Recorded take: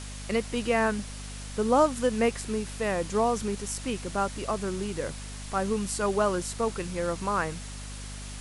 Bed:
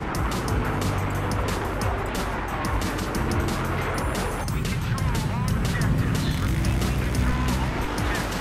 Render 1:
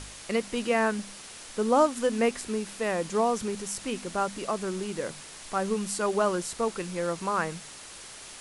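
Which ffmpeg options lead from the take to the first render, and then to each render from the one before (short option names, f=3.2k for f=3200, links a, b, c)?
-af "bandreject=f=50:t=h:w=4,bandreject=f=100:t=h:w=4,bandreject=f=150:t=h:w=4,bandreject=f=200:t=h:w=4,bandreject=f=250:t=h:w=4"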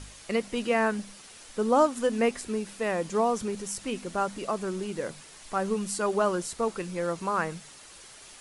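-af "afftdn=nr=6:nf=-45"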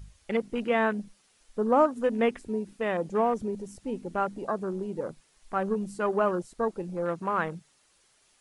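-af "afwtdn=0.0141"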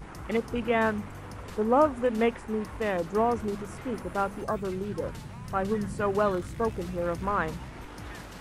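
-filter_complex "[1:a]volume=-16dB[a];[0:a][a]amix=inputs=2:normalize=0"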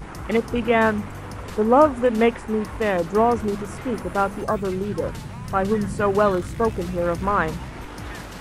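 -af "volume=7dB"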